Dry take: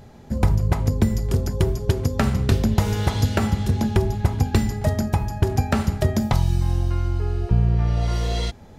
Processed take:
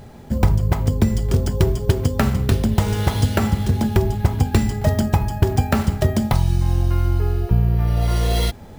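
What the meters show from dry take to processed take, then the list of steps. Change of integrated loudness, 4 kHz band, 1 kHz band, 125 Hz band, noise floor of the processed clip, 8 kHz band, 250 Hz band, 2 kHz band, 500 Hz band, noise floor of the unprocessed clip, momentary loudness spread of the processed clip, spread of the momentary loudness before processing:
+2.5 dB, +2.5 dB, +2.5 dB, +2.5 dB, −39 dBFS, +2.5 dB, +2.5 dB, +2.5 dB, +2.5 dB, −44 dBFS, 2 LU, 4 LU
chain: speech leveller within 3 dB 0.5 s
bad sample-rate conversion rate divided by 3×, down none, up hold
level +2.5 dB

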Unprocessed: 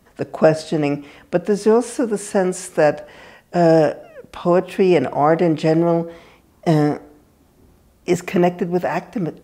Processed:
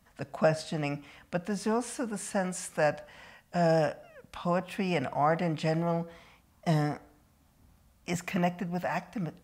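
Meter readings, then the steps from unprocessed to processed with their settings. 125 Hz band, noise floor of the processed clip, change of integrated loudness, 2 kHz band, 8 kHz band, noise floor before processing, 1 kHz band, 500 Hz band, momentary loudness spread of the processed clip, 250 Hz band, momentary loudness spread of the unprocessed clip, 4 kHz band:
−9.0 dB, −65 dBFS, −12.5 dB, −8.0 dB, −7.5 dB, −55 dBFS, −9.5 dB, −14.0 dB, 14 LU, −13.5 dB, 10 LU, −7.5 dB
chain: parametric band 380 Hz −15 dB 0.77 octaves
level −7.5 dB

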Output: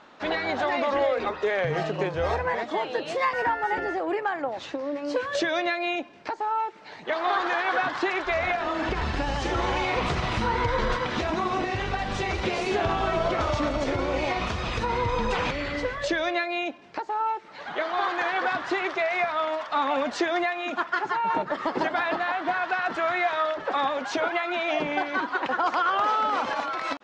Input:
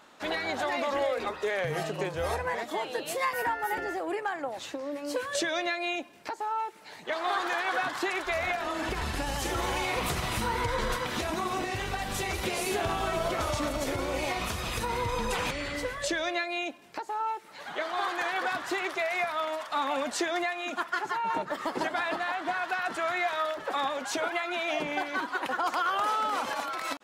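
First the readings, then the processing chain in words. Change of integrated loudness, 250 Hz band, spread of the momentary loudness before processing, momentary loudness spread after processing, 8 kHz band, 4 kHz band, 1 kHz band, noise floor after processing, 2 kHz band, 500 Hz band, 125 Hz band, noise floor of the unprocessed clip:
+4.0 dB, +5.0 dB, 4 LU, 5 LU, −7.0 dB, +1.0 dB, +4.5 dB, −43 dBFS, +3.5 dB, +5.0 dB, +5.0 dB, −47 dBFS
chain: low-pass filter 6,200 Hz 24 dB per octave
high-shelf EQ 4,000 Hz −8.5 dB
level +5 dB

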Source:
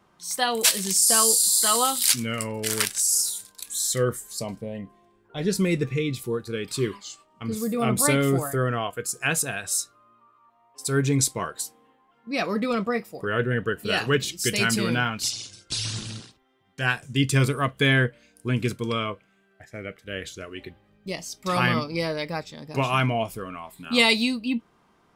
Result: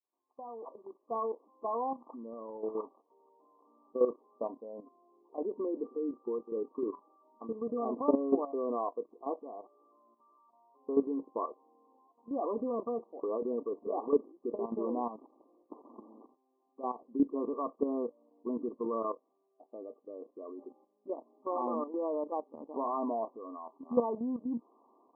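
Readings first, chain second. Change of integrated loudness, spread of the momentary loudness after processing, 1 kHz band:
−12.0 dB, 16 LU, −8.5 dB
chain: fade in at the beginning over 1.88 s
linear-phase brick-wall band-pass 230–1,200 Hz
output level in coarse steps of 11 dB

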